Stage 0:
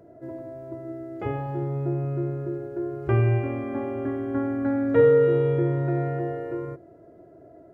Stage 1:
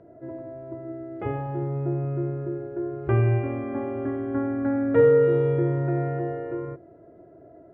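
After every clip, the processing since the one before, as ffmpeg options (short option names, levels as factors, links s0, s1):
-af "lowpass=2700"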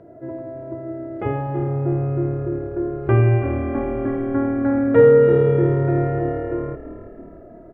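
-filter_complex "[0:a]asplit=6[s0][s1][s2][s3][s4][s5];[s1]adelay=327,afreqshift=-37,volume=0.211[s6];[s2]adelay=654,afreqshift=-74,volume=0.112[s7];[s3]adelay=981,afreqshift=-111,volume=0.0596[s8];[s4]adelay=1308,afreqshift=-148,volume=0.0316[s9];[s5]adelay=1635,afreqshift=-185,volume=0.0166[s10];[s0][s6][s7][s8][s9][s10]amix=inputs=6:normalize=0,volume=1.88"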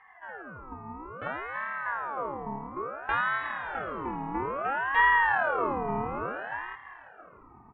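-af "highpass=120,lowpass=2100,crystalizer=i=2:c=0,aeval=exprs='val(0)*sin(2*PI*1000*n/s+1000*0.45/0.59*sin(2*PI*0.59*n/s))':c=same,volume=0.398"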